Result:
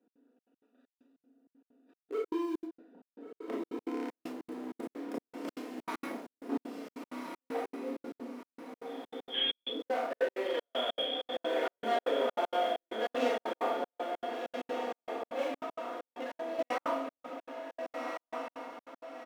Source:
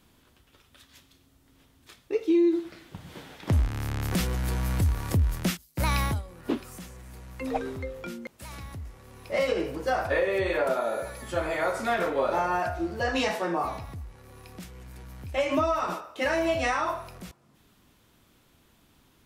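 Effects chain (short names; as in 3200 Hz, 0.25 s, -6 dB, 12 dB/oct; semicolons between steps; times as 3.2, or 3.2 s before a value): Wiener smoothing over 41 samples; comb 4.2 ms, depth 57%; in parallel at -8.5 dB: bit-crush 5-bit; on the sum: soft clip -25.5 dBFS, distortion -9 dB; steep high-pass 250 Hz 48 dB/oct; high shelf 2800 Hz -10.5 dB; 8.85–9.69 inverted band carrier 3800 Hz; Schroeder reverb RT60 0.38 s, combs from 25 ms, DRR -2.5 dB; 15.61–16.59 compressor, threshold -32 dBFS, peak gain reduction 11 dB; diffused feedback echo 1.466 s, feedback 43%, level -3.5 dB; step gate "x.xxx.x.xxx..x" 194 bpm -60 dB; gain -5.5 dB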